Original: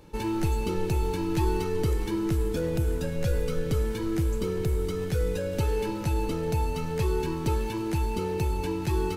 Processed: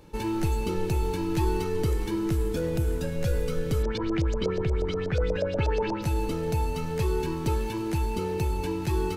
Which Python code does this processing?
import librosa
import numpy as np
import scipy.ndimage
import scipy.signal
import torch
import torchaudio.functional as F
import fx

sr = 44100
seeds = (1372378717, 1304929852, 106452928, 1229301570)

y = fx.filter_lfo_lowpass(x, sr, shape='saw_up', hz=8.3, low_hz=560.0, high_hz=6000.0, q=3.9, at=(3.82, 6.01), fade=0.02)